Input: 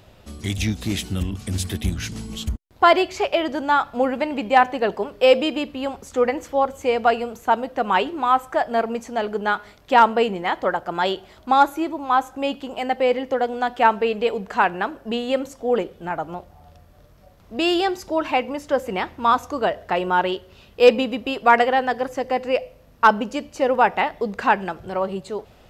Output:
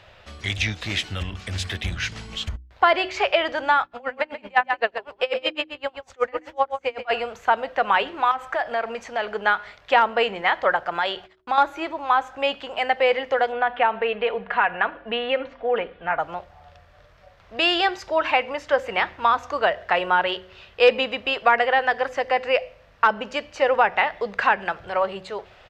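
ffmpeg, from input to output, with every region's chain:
-filter_complex "[0:a]asettb=1/sr,asplit=3[a][b][c];[a]atrim=end=3.834[d];[b]atrim=start=3.83:end=7.11,asetpts=PTS-STARTPTS,afade=t=in:d=0.004:c=qsin,afade=t=out:st=3.276:d=0.004:c=qsin,aecho=1:1:134:0.376,atrim=end_sample=144648,aeval=exprs='val(0)*pow(10,-32*(0.5-0.5*cos(2*PI*7.9*n/s))/20)':c=same[e];[c]atrim=start=7.106[f];[d][e]acrossfade=d=0.004:c1=hsin:c2=qsin[g];[g][f]acrossfade=d=0.004:c1=qsin:c2=hsin,asettb=1/sr,asplit=3[h][i][j];[h]atrim=end=8.314[k];[i]atrim=start=8.31:end=9.3,asetpts=PTS-STARTPTS,afade=t=in:d=0.004:c=qsin,afade=t=out:st=0.986:d=0.004:c=qsin,acompressor=threshold=-22dB:ratio=6:attack=3.2:release=140:knee=1:detection=peak,asoftclip=type=hard:threshold=-19.5dB[l];[j]atrim=start=9.296[m];[k][l]acrossfade=d=0.004:c1=hsin:c2=qsin[n];[n][m]acrossfade=d=0.004:c1=qsin:c2=hsin,asettb=1/sr,asplit=3[o][p][q];[o]atrim=end=10.894[r];[p]atrim=start=10.89:end=11.58,asetpts=PTS-STARTPTS,afade=t=in:d=0.004:c=qsin,afade=t=out:st=0.686:d=0.004:c=qsin,agate=range=-39dB:threshold=-46dB:ratio=16:release=100:detection=peak,acompressor=threshold=-23dB:ratio=3:attack=3.2:release=140:knee=1:detection=peak[s];[q]atrim=start=11.576[t];[r][s]acrossfade=d=0.004:c1=hsin:c2=qsin[u];[u][t]acrossfade=d=0.004:c1=qsin:c2=hsin,asettb=1/sr,asplit=3[v][w][x];[v]atrim=end=13.524[y];[w]atrim=start=13.52:end=16.19,asetpts=PTS-STARTPTS,afade=t=in:d=0.004:c=qsin,afade=t=out:st=2.666:d=0.004:c=qsin,lowpass=f=3.2k:w=0.5412,lowpass=f=3.2k:w=1.3066,aecho=1:1:4.2:0.4,atrim=end_sample=117747,acompressor=threshold=-19dB:ratio=2:attack=3.2:release=140:knee=1:detection=peak[z];[x]atrim=start=16.186[aa];[y][z]acrossfade=d=0.004:c1=hsin:c2=qsin[ab];[ab][aa]acrossfade=d=0.004:c1=qsin:c2=hsin,firequalizer=gain_entry='entry(100,0);entry(240,-8);entry(550,5);entry(910,6);entry(1700,12);entry(11000,-12)':delay=0.05:min_phase=1,acrossover=split=450[ac][ad];[ad]acompressor=threshold=-12dB:ratio=5[ae];[ac][ae]amix=inputs=2:normalize=0,bandreject=f=62.3:t=h:w=4,bandreject=f=124.6:t=h:w=4,bandreject=f=186.9:t=h:w=4,bandreject=f=249.2:t=h:w=4,bandreject=f=311.5:t=h:w=4,bandreject=f=373.8:t=h:w=4,volume=-3.5dB"

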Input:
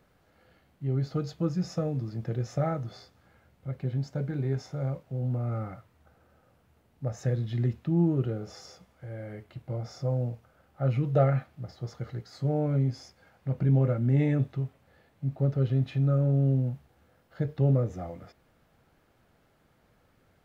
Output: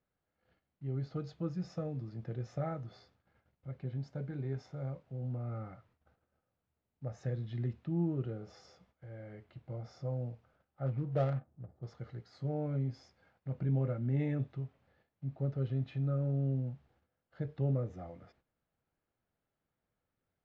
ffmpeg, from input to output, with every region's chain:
-filter_complex "[0:a]asettb=1/sr,asplit=3[a][b][c];[a]atrim=end=10.864[d];[b]atrim=start=10.86:end=11.83,asetpts=PTS-STARTPTS,afade=t=in:d=0.004:c=qsin,afade=t=out:st=0.966:d=0.004:c=qsin,highshelf=f=3.3k:g=-9,acrusher=bits=6:mode=log:mix=0:aa=0.000001,adynamicsmooth=sensitivity=3.5:basefreq=580[e];[c]atrim=start=11.826[f];[d][e]acrossfade=d=0.004:c1=hsin:c2=qsin[g];[g][f]acrossfade=d=0.004:c1=qsin:c2=hsin,agate=range=-13dB:threshold=-60dB:ratio=16:detection=peak,lowpass=4.7k,volume=-8.5dB"

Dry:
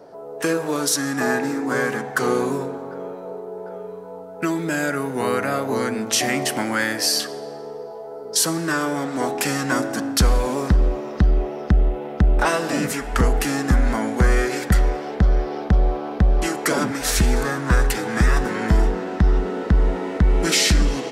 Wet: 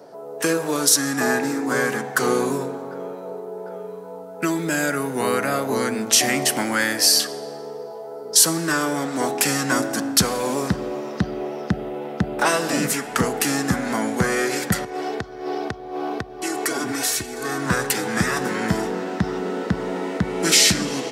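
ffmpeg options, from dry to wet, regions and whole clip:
-filter_complex "[0:a]asettb=1/sr,asplit=3[a][b][c];[a]atrim=end=14.844[d];[b]atrim=start=14.84:end=17.66,asetpts=PTS-STARTPTS,afade=t=in:d=0.004:c=qsin,afade=t=out:st=2.816:d=0.004:c=qsin,aecho=1:1:2.7:0.71,atrim=end_sample=124362,acompressor=threshold=-21dB:ratio=8:attack=3.2:release=140:knee=1:detection=peak[e];[c]atrim=start=17.656[f];[d][e]acrossfade=d=0.004:c1=hsin:c2=qsin[g];[g][f]acrossfade=d=0.004:c1=qsin:c2=hsin,highpass=f=110:w=0.5412,highpass=f=110:w=1.3066,highshelf=f=4.2k:g=7"

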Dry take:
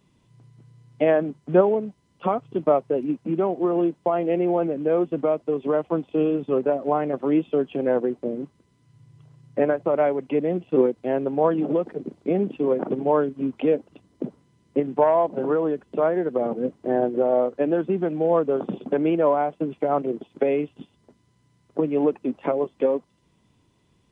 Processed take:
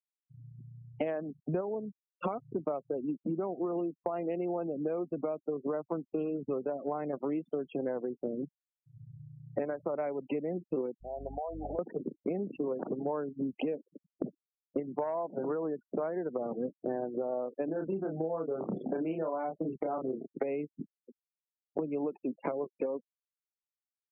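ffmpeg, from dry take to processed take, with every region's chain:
-filter_complex "[0:a]asettb=1/sr,asplit=3[a][b][c];[a]atrim=end=11.014[d];[b]atrim=start=11.01:end=11.79,asetpts=PTS-STARTPTS,afade=t=in:d=0.004:c=qsin,afade=t=out:st=0.776:d=0.004:c=qsin,bandpass=f=730:t=q:w=5.5,aeval=exprs='val(0)+0.00562*(sin(2*PI*50*n/s)+sin(2*PI*2*50*n/s)/2+sin(2*PI*3*50*n/s)/3+sin(2*PI*4*50*n/s)/4+sin(2*PI*5*50*n/s)/5)':c=same,acompressor=threshold=-33dB:ratio=8:attack=3.2:release=140:knee=1:detection=peak[e];[c]atrim=start=11.786[f];[d][e]acrossfade=d=0.004:c1=hsin:c2=qsin[g];[g][f]acrossfade=d=0.004:c1=qsin:c2=hsin,asettb=1/sr,asplit=3[h][i][j];[h]atrim=end=17.654[k];[i]atrim=start=17.65:end=20.31,asetpts=PTS-STARTPTS,afade=t=in:d=0.004:c=qsin,afade=t=out:st=2.656:d=0.004:c=qsin,acompressor=threshold=-21dB:ratio=3:attack=3.2:release=140:knee=1:detection=peak,asplit=2[l][m];[m]adelay=31,volume=-3dB[n];[l][n]amix=inputs=2:normalize=0,atrim=end_sample=117306[o];[j]atrim=start=20.306[p];[k][o]acrossfade=d=0.004:c1=hsin:c2=qsin[q];[q][p]acrossfade=d=0.004:c1=qsin:c2=hsin,afftfilt=real='re*gte(hypot(re,im),0.0158)':imag='im*gte(hypot(re,im),0.0158)':win_size=1024:overlap=0.75,acompressor=threshold=-33dB:ratio=8,volume=2dB"

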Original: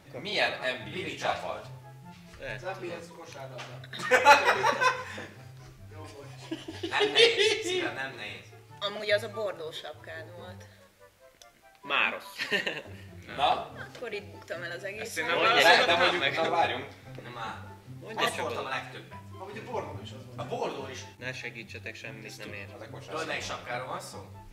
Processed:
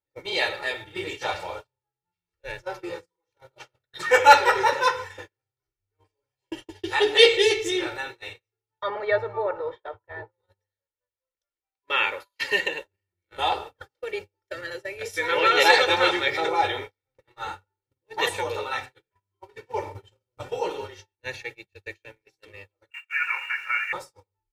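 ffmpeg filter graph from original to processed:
-filter_complex "[0:a]asettb=1/sr,asplit=3[a][b][c];[a]atrim=end=8.824[d];[b]atrim=start=8.82:end=10.32,asetpts=PTS-STARTPTS,afade=t=in:d=0.004:c=qsin,afade=t=out:st=1.496:d=0.004:c=qsin,lowpass=1.7k,equalizer=f=950:t=o:w=1.2:g=9.5[e];[c]atrim=start=10.316[f];[d][e]acrossfade=d=0.004:c1=hsin:c2=qsin[g];[g][f]acrossfade=d=0.004:c1=qsin:c2=hsin,asettb=1/sr,asplit=3[h][i][j];[h]atrim=end=22.904[k];[i]atrim=start=22.9:end=23.93,asetpts=PTS-STARTPTS,afade=t=in:d=0.004:c=qsin,afade=t=out:st=1.026:d=0.004:c=qsin,lowpass=f=2.5k:t=q:w=0.5098,lowpass=f=2.5k:t=q:w=0.6013,lowpass=f=2.5k:t=q:w=0.9,lowpass=f=2.5k:t=q:w=2.563,afreqshift=-2900,highpass=f=1.5k:t=q:w=2.6,aeval=exprs='sgn(val(0))*max(abs(val(0))-0.00141,0)':c=same[l];[j]atrim=start=23.926[m];[k][l]acrossfade=d=0.004:c1=hsin:c2=qsin[n];[n][m]acrossfade=d=0.004:c1=qsin:c2=hsin,agate=range=-41dB:threshold=-38dB:ratio=16:detection=peak,equalizer=f=140:w=5.3:g=-14,aecho=1:1:2.2:0.89,volume=1dB"

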